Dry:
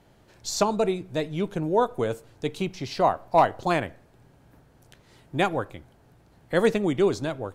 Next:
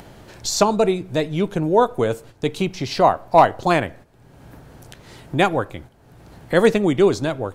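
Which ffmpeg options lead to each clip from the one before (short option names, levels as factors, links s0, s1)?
-filter_complex "[0:a]agate=range=0.316:threshold=0.00447:ratio=16:detection=peak,asplit=2[s0][s1];[s1]acompressor=mode=upward:threshold=0.0562:ratio=2.5,volume=1.06[s2];[s0][s2]amix=inputs=2:normalize=0"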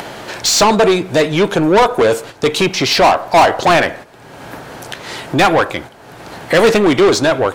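-filter_complex "[0:a]asplit=2[s0][s1];[s1]highpass=f=720:p=1,volume=20,asoftclip=type=tanh:threshold=0.75[s2];[s0][s2]amix=inputs=2:normalize=0,lowpass=f=5400:p=1,volume=0.501"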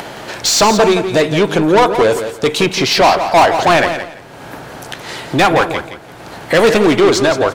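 -af "aecho=1:1:170|340|510:0.335|0.0737|0.0162"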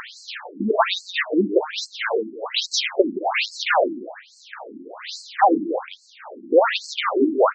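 -af "afftfilt=real='re*between(b*sr/1024,250*pow(5900/250,0.5+0.5*sin(2*PI*1.2*pts/sr))/1.41,250*pow(5900/250,0.5+0.5*sin(2*PI*1.2*pts/sr))*1.41)':imag='im*between(b*sr/1024,250*pow(5900/250,0.5+0.5*sin(2*PI*1.2*pts/sr))/1.41,250*pow(5900/250,0.5+0.5*sin(2*PI*1.2*pts/sr))*1.41)':win_size=1024:overlap=0.75"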